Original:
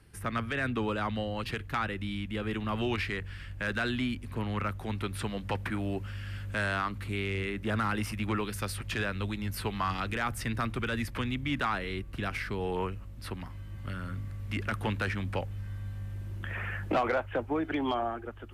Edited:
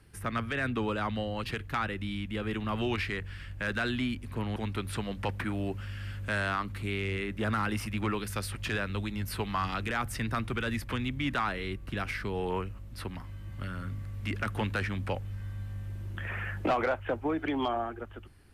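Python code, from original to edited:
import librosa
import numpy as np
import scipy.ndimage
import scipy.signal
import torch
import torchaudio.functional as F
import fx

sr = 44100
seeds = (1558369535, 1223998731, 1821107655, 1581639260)

y = fx.edit(x, sr, fx.cut(start_s=4.56, length_s=0.26), tone=tone)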